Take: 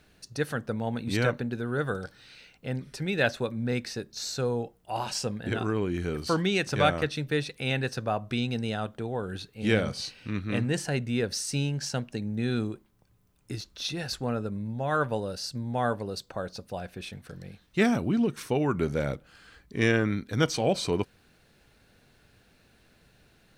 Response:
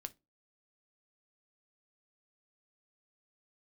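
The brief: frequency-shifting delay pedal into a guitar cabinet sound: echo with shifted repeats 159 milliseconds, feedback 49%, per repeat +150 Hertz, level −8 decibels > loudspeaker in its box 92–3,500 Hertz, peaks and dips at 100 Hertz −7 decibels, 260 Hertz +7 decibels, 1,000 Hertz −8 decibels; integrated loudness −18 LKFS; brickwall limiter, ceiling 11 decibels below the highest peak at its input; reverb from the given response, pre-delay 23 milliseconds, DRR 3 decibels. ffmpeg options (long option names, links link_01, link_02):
-filter_complex "[0:a]alimiter=limit=-21dB:level=0:latency=1,asplit=2[link_01][link_02];[1:a]atrim=start_sample=2205,adelay=23[link_03];[link_02][link_03]afir=irnorm=-1:irlink=0,volume=1dB[link_04];[link_01][link_04]amix=inputs=2:normalize=0,asplit=7[link_05][link_06][link_07][link_08][link_09][link_10][link_11];[link_06]adelay=159,afreqshift=150,volume=-8dB[link_12];[link_07]adelay=318,afreqshift=300,volume=-14.2dB[link_13];[link_08]adelay=477,afreqshift=450,volume=-20.4dB[link_14];[link_09]adelay=636,afreqshift=600,volume=-26.6dB[link_15];[link_10]adelay=795,afreqshift=750,volume=-32.8dB[link_16];[link_11]adelay=954,afreqshift=900,volume=-39dB[link_17];[link_05][link_12][link_13][link_14][link_15][link_16][link_17]amix=inputs=7:normalize=0,highpass=92,equalizer=frequency=100:width_type=q:width=4:gain=-7,equalizer=frequency=260:width_type=q:width=4:gain=7,equalizer=frequency=1000:width_type=q:width=4:gain=-8,lowpass=frequency=3500:width=0.5412,lowpass=frequency=3500:width=1.3066,volume=11.5dB"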